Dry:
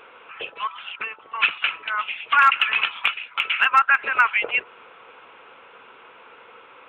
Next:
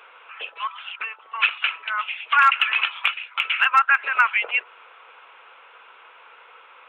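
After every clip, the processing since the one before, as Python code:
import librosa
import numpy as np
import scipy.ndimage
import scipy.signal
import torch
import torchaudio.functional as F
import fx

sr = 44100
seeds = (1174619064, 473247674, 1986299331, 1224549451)

y = scipy.signal.sosfilt(scipy.signal.butter(2, 700.0, 'highpass', fs=sr, output='sos'), x)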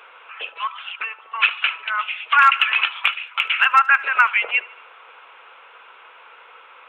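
y = fx.echo_feedback(x, sr, ms=74, feedback_pct=53, wet_db=-21.5)
y = F.gain(torch.from_numpy(y), 2.5).numpy()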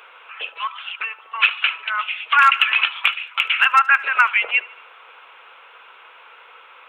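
y = fx.high_shelf(x, sr, hz=3400.0, db=6.5)
y = F.gain(torch.from_numpy(y), -1.0).numpy()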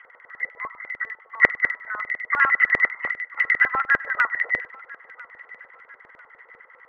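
y = fx.freq_compress(x, sr, knee_hz=1800.0, ratio=4.0)
y = fx.filter_lfo_bandpass(y, sr, shape='square', hz=10.0, low_hz=510.0, high_hz=2300.0, q=1.7)
y = fx.echo_thinned(y, sr, ms=996, feedback_pct=41, hz=400.0, wet_db=-21.5)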